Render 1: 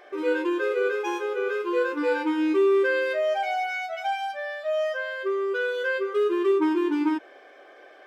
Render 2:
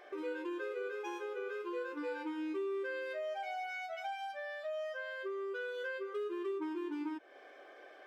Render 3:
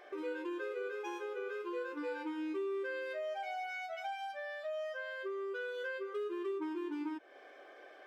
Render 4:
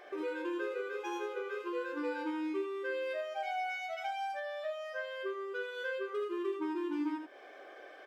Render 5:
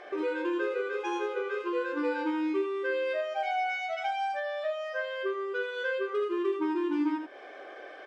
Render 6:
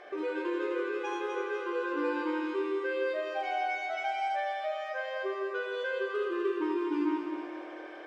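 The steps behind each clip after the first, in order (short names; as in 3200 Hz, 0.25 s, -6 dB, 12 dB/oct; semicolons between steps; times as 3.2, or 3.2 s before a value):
compressor 2.5:1, threshold -36 dBFS, peak gain reduction 12 dB; gain -5.5 dB
nothing audible
echo 78 ms -6 dB; gain +2.5 dB
air absorption 58 m; gain +6.5 dB
multi-head echo 83 ms, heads second and third, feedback 63%, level -7 dB; gain -3 dB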